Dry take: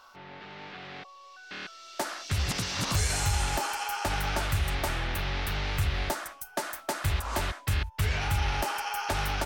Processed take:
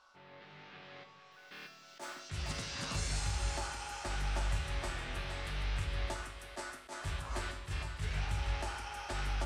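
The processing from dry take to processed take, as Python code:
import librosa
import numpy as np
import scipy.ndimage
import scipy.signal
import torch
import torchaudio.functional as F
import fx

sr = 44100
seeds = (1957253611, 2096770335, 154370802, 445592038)

y = scipy.signal.sosfilt(scipy.signal.butter(4, 9500.0, 'lowpass', fs=sr, output='sos'), x)
y = fx.mod_noise(y, sr, seeds[0], snr_db=21, at=(1.31, 2.2))
y = fx.comb_fb(y, sr, f0_hz=51.0, decay_s=0.58, harmonics='odd', damping=0.0, mix_pct=80)
y = fx.echo_split(y, sr, split_hz=350.0, low_ms=163, high_ms=464, feedback_pct=52, wet_db=-8.5)
y = fx.attack_slew(y, sr, db_per_s=260.0)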